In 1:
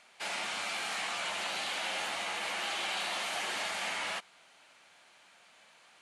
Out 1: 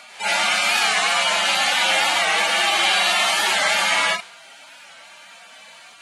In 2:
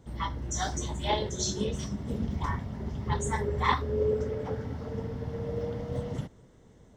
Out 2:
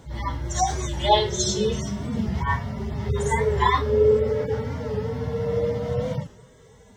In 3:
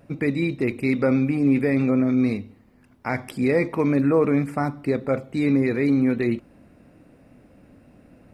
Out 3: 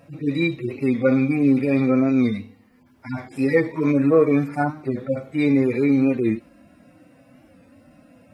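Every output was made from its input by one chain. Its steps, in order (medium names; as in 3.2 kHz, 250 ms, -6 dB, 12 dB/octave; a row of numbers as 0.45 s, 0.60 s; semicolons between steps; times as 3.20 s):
harmonic-percussive separation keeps harmonic; bass shelf 420 Hz -8 dB; warped record 45 rpm, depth 100 cents; peak normalisation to -6 dBFS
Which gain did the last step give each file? +20.5 dB, +14.0 dB, +7.5 dB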